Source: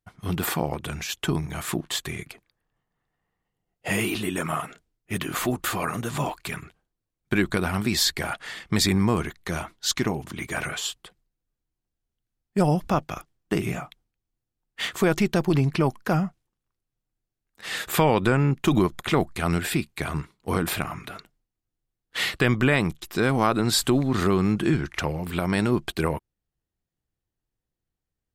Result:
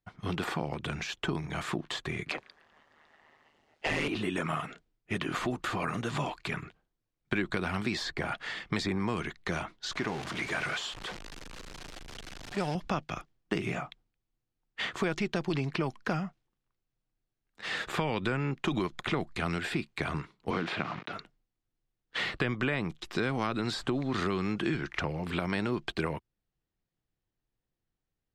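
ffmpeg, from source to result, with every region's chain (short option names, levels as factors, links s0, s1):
-filter_complex "[0:a]asettb=1/sr,asplit=3[s0][s1][s2];[s0]atrim=end=2.284[s3];[s1]atrim=start=2.28:end=4.08,asetpts=PTS-STARTPTS,afade=t=in:d=0.004:c=qsin,afade=t=out:st=1.796:d=0.004:c=qsin,asplit=2[s4][s5];[s5]highpass=f=720:p=1,volume=31.6,asoftclip=type=tanh:threshold=0.237[s6];[s4][s6]amix=inputs=2:normalize=0,lowpass=f=6900:p=1,volume=0.501,aeval=exprs='val(0)*sin(2*PI*76*n/s)':c=same[s7];[s2]atrim=start=4.076[s8];[s3][s7]acrossfade=d=0.004:c1=hsin:c2=qsin[s9];[s9][s8]acrossfade=d=0.004:c1=qsin:c2=hsin,asettb=1/sr,asplit=3[s10][s11][s12];[s10]atrim=end=9.924[s13];[s11]atrim=start=9.92:end=12.75,asetpts=PTS-STARTPTS,afade=t=in:d=0.004:c=qsin,afade=t=out:st=2.826:d=0.004:c=qsin,aeval=exprs='val(0)+0.5*0.0376*sgn(val(0))':c=same,lowshelf=f=430:g=-11[s14];[s12]atrim=start=12.746[s15];[s13][s14]acrossfade=d=0.004:c1=hsin:c2=qsin[s16];[s16][s15]acrossfade=d=0.004:c1=qsin:c2=hsin,asettb=1/sr,asplit=3[s17][s18][s19];[s17]atrim=end=20.504[s20];[s18]atrim=start=20.5:end=21.13,asetpts=PTS-STARTPTS,afade=t=in:d=0.004:c=qsin,afade=t=out:st=0.626:d=0.004:c=qsin,acrusher=bits=5:mix=0:aa=0.5,highpass=150,lowpass=3800[s21];[s19]atrim=start=21.126[s22];[s20][s21]acrossfade=d=0.004:c1=hsin:c2=qsin[s23];[s23][s22]acrossfade=d=0.004:c1=qsin:c2=hsin,equalizer=f=69:w=2.2:g=-6.5,acrossover=split=320|1700[s24][s25][s26];[s24]acompressor=threshold=0.02:ratio=4[s27];[s25]acompressor=threshold=0.02:ratio=4[s28];[s26]acompressor=threshold=0.0178:ratio=4[s29];[s27][s28][s29]amix=inputs=3:normalize=0,lowpass=4900"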